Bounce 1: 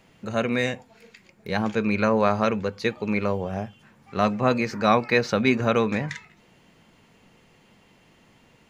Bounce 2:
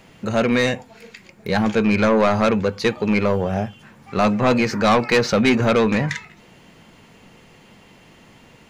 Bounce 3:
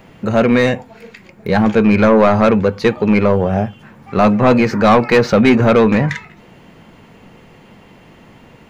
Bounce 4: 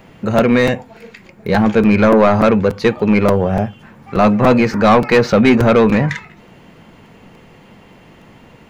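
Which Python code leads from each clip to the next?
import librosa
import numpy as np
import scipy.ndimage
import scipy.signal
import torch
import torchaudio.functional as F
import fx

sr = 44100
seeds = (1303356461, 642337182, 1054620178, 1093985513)

y1 = 10.0 ** (-18.5 / 20.0) * np.tanh(x / 10.0 ** (-18.5 / 20.0))
y1 = y1 * librosa.db_to_amplitude(8.5)
y2 = fx.peak_eq(y1, sr, hz=7500.0, db=-9.5, octaves=2.7)
y2 = y2 * librosa.db_to_amplitude(6.5)
y3 = fx.buffer_crackle(y2, sr, first_s=0.38, period_s=0.29, block=256, kind='repeat')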